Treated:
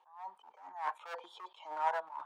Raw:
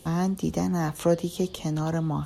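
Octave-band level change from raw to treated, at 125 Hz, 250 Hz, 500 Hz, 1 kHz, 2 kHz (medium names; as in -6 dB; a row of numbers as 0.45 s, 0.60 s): under -40 dB, under -40 dB, -17.0 dB, -2.0 dB, -5.0 dB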